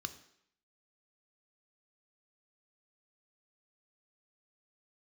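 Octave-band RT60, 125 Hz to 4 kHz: 0.55 s, 0.70 s, 0.70 s, 0.70 s, 0.75 s, 0.70 s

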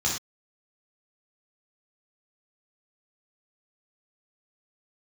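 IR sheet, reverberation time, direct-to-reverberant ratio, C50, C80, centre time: no single decay rate, -4.0 dB, 4.0 dB, 9.0 dB, 35 ms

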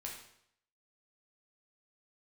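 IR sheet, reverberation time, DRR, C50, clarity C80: 0.70 s, -2.0 dB, 4.5 dB, 7.5 dB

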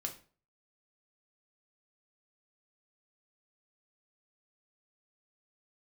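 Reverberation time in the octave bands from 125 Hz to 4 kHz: 0.50 s, 0.45 s, 0.45 s, 0.40 s, 0.35 s, 0.30 s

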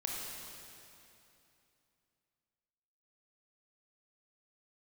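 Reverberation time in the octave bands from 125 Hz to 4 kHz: 3.2 s, 3.1 s, 2.9 s, 2.8 s, 2.7 s, 2.6 s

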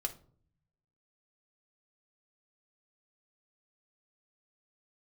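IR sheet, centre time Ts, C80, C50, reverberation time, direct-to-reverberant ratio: 7 ms, 20.5 dB, 15.0 dB, 0.50 s, 3.0 dB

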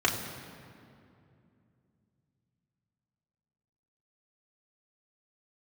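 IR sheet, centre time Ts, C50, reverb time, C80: 46 ms, 6.5 dB, 2.6 s, 7.5 dB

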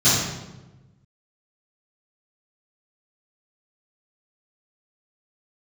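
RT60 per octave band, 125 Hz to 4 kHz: 1.7 s, 1.5 s, 1.2 s, 1.0 s, 0.85 s, 0.75 s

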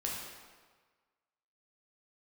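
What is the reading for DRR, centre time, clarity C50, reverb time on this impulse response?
-3.5 dB, 80 ms, 0.5 dB, 1.5 s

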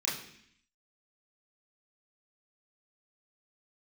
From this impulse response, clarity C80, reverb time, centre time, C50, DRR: 9.5 dB, 0.65 s, 43 ms, 5.5 dB, -7.0 dB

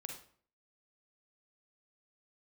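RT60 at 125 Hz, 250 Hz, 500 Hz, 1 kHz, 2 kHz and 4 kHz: 0.60 s, 0.55 s, 0.55 s, 0.50 s, 0.45 s, 0.40 s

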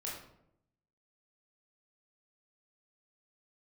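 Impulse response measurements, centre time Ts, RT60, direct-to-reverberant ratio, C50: 48 ms, 0.75 s, -5.0 dB, 2.5 dB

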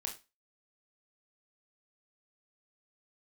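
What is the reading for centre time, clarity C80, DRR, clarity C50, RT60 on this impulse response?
16 ms, 17.5 dB, 1.5 dB, 11.0 dB, 0.25 s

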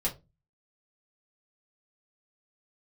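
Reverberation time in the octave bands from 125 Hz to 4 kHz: 0.45 s, 0.45 s, 0.30 s, 0.20 s, 0.20 s, 0.15 s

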